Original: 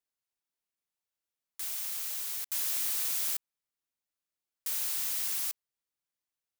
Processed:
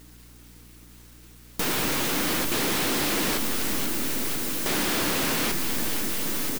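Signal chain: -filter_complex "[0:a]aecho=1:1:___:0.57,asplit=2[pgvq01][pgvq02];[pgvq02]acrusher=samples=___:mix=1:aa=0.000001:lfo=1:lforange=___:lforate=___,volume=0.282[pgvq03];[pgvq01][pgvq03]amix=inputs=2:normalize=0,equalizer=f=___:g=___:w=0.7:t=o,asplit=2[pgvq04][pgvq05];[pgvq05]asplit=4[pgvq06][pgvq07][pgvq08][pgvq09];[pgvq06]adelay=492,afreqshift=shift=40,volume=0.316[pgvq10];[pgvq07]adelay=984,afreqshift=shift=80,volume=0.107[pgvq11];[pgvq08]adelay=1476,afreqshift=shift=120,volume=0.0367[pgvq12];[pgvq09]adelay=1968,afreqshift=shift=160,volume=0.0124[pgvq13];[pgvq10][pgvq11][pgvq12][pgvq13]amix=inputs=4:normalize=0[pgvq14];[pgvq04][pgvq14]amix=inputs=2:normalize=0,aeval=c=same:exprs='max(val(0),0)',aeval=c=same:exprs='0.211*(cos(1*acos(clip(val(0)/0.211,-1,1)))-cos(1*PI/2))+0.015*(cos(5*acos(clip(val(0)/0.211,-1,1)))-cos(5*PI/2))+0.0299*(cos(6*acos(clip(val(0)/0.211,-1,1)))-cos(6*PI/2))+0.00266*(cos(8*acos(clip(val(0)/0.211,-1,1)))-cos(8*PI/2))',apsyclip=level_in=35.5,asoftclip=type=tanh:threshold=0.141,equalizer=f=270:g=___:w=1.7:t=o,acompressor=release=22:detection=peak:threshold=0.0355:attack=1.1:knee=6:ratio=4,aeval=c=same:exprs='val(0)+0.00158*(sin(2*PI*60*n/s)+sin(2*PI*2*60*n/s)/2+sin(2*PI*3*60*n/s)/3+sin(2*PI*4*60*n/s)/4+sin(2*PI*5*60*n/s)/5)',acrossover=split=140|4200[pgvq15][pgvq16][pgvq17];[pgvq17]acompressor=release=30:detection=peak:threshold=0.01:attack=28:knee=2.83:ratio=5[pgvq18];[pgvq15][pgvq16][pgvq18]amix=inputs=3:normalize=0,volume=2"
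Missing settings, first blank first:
6.5, 9, 9, 3.8, 650, -15, 14.5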